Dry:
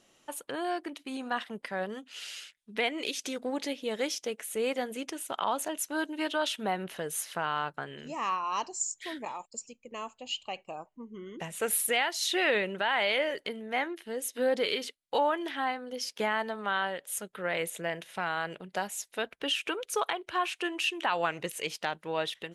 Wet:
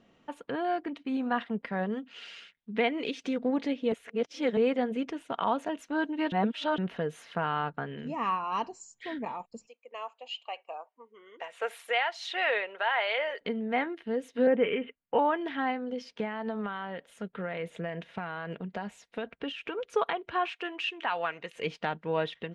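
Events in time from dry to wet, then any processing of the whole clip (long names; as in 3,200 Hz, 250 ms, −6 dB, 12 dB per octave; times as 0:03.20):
0:03.92–0:04.57: reverse
0:06.32–0:06.78: reverse
0:09.67–0:13.41: high-pass filter 550 Hz 24 dB per octave
0:14.47–0:15.19: Butterworth low-pass 3,000 Hz 72 dB per octave
0:15.84–0:19.85: downward compressor 3 to 1, threshold −34 dBFS
0:20.50–0:21.54: high-pass filter 510 Hz → 1,300 Hz 6 dB per octave
whole clip: low-pass filter 2,700 Hz 12 dB per octave; parametric band 120 Hz +9.5 dB 2.7 octaves; comb filter 4.3 ms, depth 31%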